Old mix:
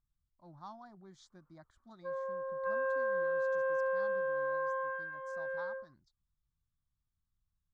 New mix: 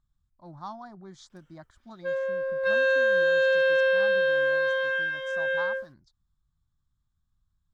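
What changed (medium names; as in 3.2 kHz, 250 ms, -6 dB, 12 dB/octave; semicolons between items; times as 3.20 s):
speech +9.5 dB; background: remove four-pole ladder low-pass 1.2 kHz, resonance 75%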